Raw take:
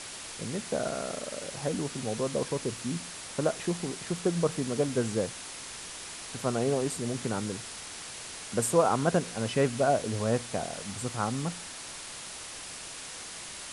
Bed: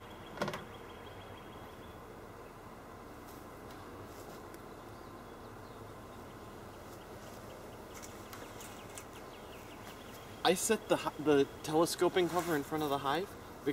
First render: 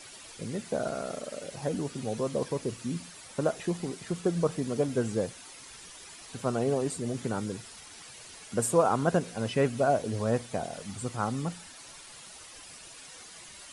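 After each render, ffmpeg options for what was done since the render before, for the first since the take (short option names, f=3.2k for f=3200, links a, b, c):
-af "afftdn=nr=10:nf=-42"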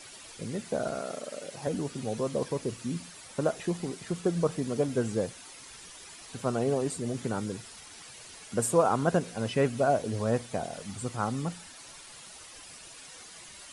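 -filter_complex "[0:a]asettb=1/sr,asplit=3[a][b][c];[a]atrim=end=0.994[d];[b]atrim=start=0.99:end=1.67,asetpts=PTS-STARTPTS,afade=t=in:d=0.004:c=qsin,afade=t=out:st=0.676:d=0.004:c=qsin,highpass=f=190:p=1[e];[c]atrim=start=1.666[f];[d][e]acrossfade=d=0.004:c1=hsin:c2=qsin[g];[g][f]acrossfade=d=0.004:c1=qsin:c2=hsin"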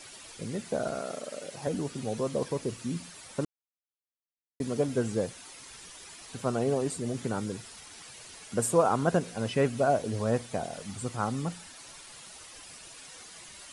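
-filter_complex "[0:a]asplit=3[a][b][c];[a]atrim=end=3.45,asetpts=PTS-STARTPTS,afade=t=out:st=3.446:d=0.004:c=hsin[d];[b]atrim=start=3.45:end=4.6,asetpts=PTS-STARTPTS,volume=0[e];[c]atrim=start=4.6,asetpts=PTS-STARTPTS,afade=t=in:d=0.004:c=hsin[f];[d][e][f]concat=n=3:v=0:a=1"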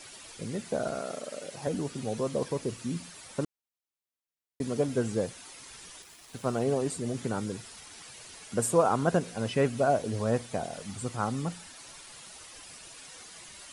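-filter_complex "[0:a]asettb=1/sr,asplit=3[a][b][c];[a]atrim=end=6.024[d];[b]atrim=start=6.02:end=6.64,asetpts=PTS-STARTPTS,afade=t=in:d=0.004:c=qsin,afade=t=out:st=0.616:d=0.004:c=qsin,aeval=exprs='sgn(val(0))*max(abs(val(0))-0.00266,0)':c=same[e];[c]atrim=start=6.636[f];[d][e]acrossfade=d=0.004:c1=hsin:c2=qsin[g];[g][f]acrossfade=d=0.004:c1=qsin:c2=hsin"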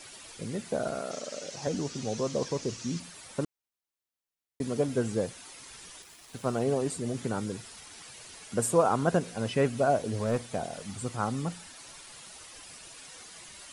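-filter_complex "[0:a]asettb=1/sr,asplit=3[a][b][c];[a]atrim=end=1.114[d];[b]atrim=start=1.11:end=3,asetpts=PTS-STARTPTS,afade=t=in:d=0.004:c=qsin,afade=t=out:st=1.886:d=0.004:c=qsin,lowpass=f=6.1k:t=q:w=2.8[e];[c]atrim=start=2.996[f];[d][e]acrossfade=d=0.004:c1=hsin:c2=qsin[g];[g][f]acrossfade=d=0.004:c1=qsin:c2=hsin,asettb=1/sr,asplit=3[h][i][j];[h]atrim=end=10.074[k];[i]atrim=start=10.07:end=11.15,asetpts=PTS-STARTPTS,afade=t=in:d=0.004:c=qsin,afade=t=out:st=1.076:d=0.004:c=qsin,volume=21.5dB,asoftclip=hard,volume=-21.5dB[l];[j]atrim=start=11.146[m];[k][l]acrossfade=d=0.004:c1=hsin:c2=qsin[n];[n][m]acrossfade=d=0.004:c1=qsin:c2=hsin"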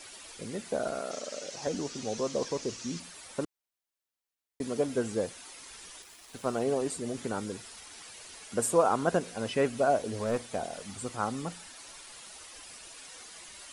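-af "equalizer=f=130:w=1.2:g=-8.5"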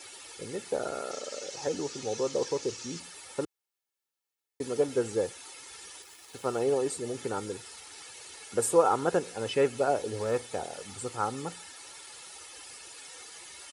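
-af "highpass=84,aecho=1:1:2.3:0.52"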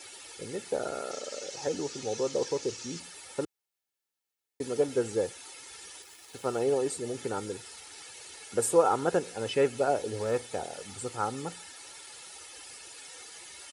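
-af "equalizer=f=1.1k:w=5.6:g=-4"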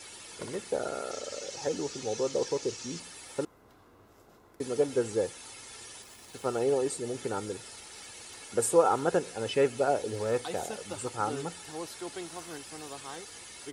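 -filter_complex "[1:a]volume=-10dB[a];[0:a][a]amix=inputs=2:normalize=0"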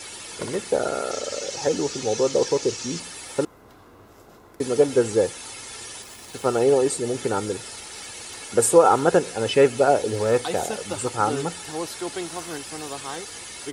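-af "volume=9dB,alimiter=limit=-3dB:level=0:latency=1"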